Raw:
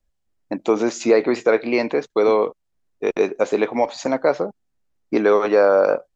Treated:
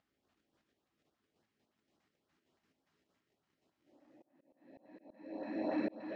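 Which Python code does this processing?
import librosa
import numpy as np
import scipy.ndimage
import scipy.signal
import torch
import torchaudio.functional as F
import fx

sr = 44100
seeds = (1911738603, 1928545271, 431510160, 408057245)

p1 = x + 10.0 ** (-14.0 / 20.0) * np.pad(x, (int(197 * sr / 1000.0), 0))[:len(x)]
p2 = fx.paulstretch(p1, sr, seeds[0], factor=45.0, window_s=0.25, from_s=0.31)
p3 = fx.leveller(p2, sr, passes=1)
p4 = p3 + fx.echo_single(p3, sr, ms=118, db=-13.5, dry=0)
p5 = fx.filter_lfo_notch(p4, sr, shape='saw_up', hz=3.5, low_hz=330.0, high_hz=2600.0, q=1.1)
p6 = fx.bandpass_edges(p5, sr, low_hz=210.0, high_hz=3900.0)
p7 = fx.auto_swell(p6, sr, attack_ms=639.0)
y = p7 * 10.0 ** (6.0 / 20.0)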